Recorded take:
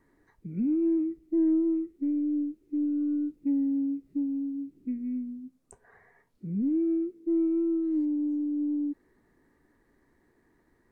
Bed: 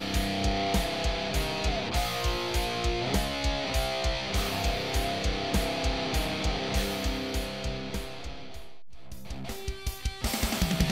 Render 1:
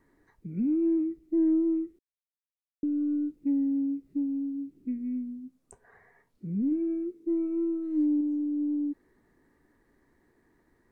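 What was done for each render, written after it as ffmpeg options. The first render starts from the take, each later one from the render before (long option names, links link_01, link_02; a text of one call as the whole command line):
ffmpeg -i in.wav -filter_complex "[0:a]asettb=1/sr,asplit=3[link_01][link_02][link_03];[link_01]atrim=end=6.704[link_04];[link_02]atrim=start=6.7:end=8.21,asetpts=PTS-STARTPTS,afade=type=in:duration=0.004:curve=qsin,afade=type=out:start_time=1.506:duration=0.004:curve=qsin,asplit=2[link_05][link_06];[link_06]adelay=17,volume=-7dB[link_07];[link_05][link_07]amix=inputs=2:normalize=0,atrim=end_sample=66591[link_08];[link_03]atrim=start=8.206[link_09];[link_04][link_08]acrossfade=duration=0.004:curve1=hsin:curve2=qsin[link_10];[link_10][link_09]acrossfade=duration=0.004:curve1=qsin:curve2=hsin,asplit=3[link_11][link_12][link_13];[link_11]atrim=end=1.99,asetpts=PTS-STARTPTS,afade=type=out:start_time=1.986:duration=0.004:curve=hsin[link_14];[link_12]atrim=start=1.99:end=2.83,asetpts=PTS-STARTPTS,volume=0[link_15];[link_13]atrim=start=2.83,asetpts=PTS-STARTPTS,afade=type=in:duration=0.004:curve=hsin[link_16];[link_14][link_15][link_16]concat=n=3:v=0:a=1" out.wav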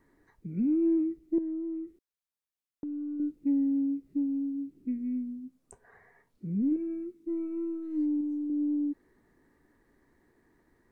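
ffmpeg -i in.wav -filter_complex "[0:a]asettb=1/sr,asplit=3[link_01][link_02][link_03];[link_01]atrim=end=1.384[link_04];[link_02]atrim=start=1.38:end=3.2,asetpts=PTS-STARTPTS,afade=type=in:duration=0.004:curve=qsin,afade=type=out:start_time=1.816:duration=0.004:curve=qsin,acompressor=threshold=-36dB:ratio=3:attack=3.2:release=140:knee=1:detection=peak[link_05];[link_03]atrim=start=3.196[link_06];[link_04][link_05]acrossfade=duration=0.004:curve1=hsin:curve2=qsin[link_07];[link_07][link_06]acrossfade=duration=0.004:curve1=qsin:curve2=hsin,asettb=1/sr,asplit=3[link_08][link_09][link_10];[link_08]atrim=end=6.764[link_11];[link_09]atrim=start=6.76:end=8.5,asetpts=PTS-STARTPTS,afade=type=in:duration=0.004:curve=qsin,afade=type=out:start_time=1.736:duration=0.004:curve=qsin,equalizer=frequency=470:width_type=o:width=0.72:gain=-13.5[link_12];[link_10]atrim=start=8.496[link_13];[link_11][link_12]acrossfade=duration=0.004:curve1=hsin:curve2=qsin[link_14];[link_14][link_13]acrossfade=duration=0.004:curve1=qsin:curve2=hsin" out.wav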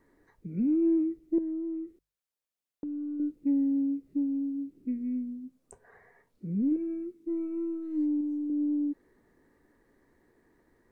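ffmpeg -i in.wav -af "equalizer=frequency=510:width=2.5:gain=4.5,bandreject=frequency=50:width_type=h:width=6,bandreject=frequency=100:width_type=h:width=6,bandreject=frequency=150:width_type=h:width=6" out.wav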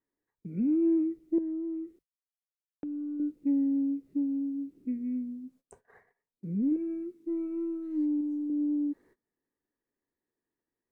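ffmpeg -i in.wav -af "agate=range=-24dB:threshold=-57dB:ratio=16:detection=peak,lowshelf=frequency=71:gain=-8" out.wav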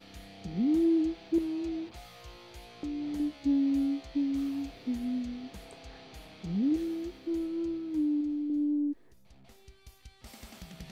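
ffmpeg -i in.wav -i bed.wav -filter_complex "[1:a]volume=-20dB[link_01];[0:a][link_01]amix=inputs=2:normalize=0" out.wav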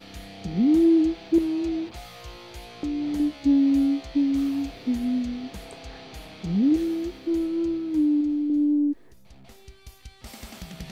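ffmpeg -i in.wav -af "volume=7.5dB" out.wav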